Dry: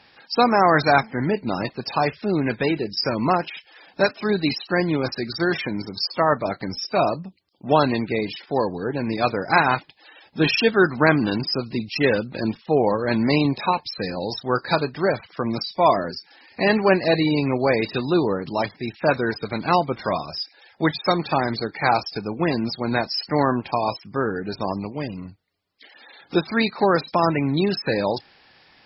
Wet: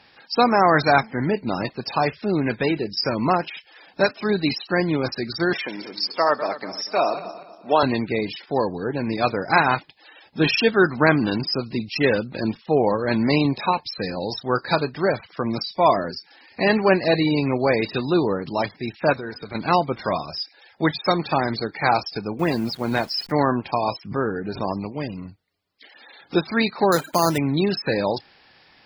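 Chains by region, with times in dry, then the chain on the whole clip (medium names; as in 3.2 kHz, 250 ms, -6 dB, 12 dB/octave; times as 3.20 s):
5.53–7.83 s: backward echo that repeats 119 ms, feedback 55%, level -11.5 dB + high-pass 360 Hz
19.13–19.55 s: compression 2:1, threshold -34 dBFS + de-hum 245.9 Hz, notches 19
22.39–23.32 s: send-on-delta sampling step -41 dBFS + overload inside the chain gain 10.5 dB
24.04–24.63 s: low-pass 2.3 kHz 6 dB/octave + swell ahead of each attack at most 130 dB/s
26.92–27.38 s: high-pass 44 Hz + careless resampling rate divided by 8×, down none, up hold
whole clip: none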